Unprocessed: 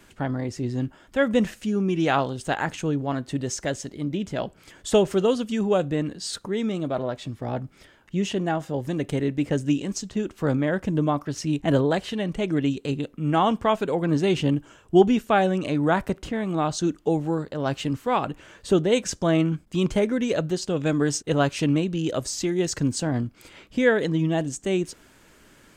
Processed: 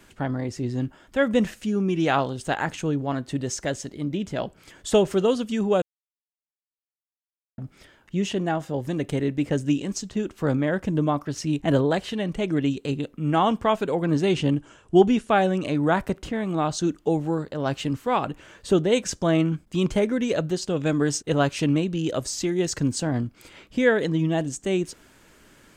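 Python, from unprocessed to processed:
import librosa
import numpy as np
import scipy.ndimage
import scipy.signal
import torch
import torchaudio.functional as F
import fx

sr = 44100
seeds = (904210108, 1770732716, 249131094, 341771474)

y = fx.resample_bad(x, sr, factor=2, down='none', up='filtered', at=(14.32, 15.29))
y = fx.edit(y, sr, fx.silence(start_s=5.82, length_s=1.76), tone=tone)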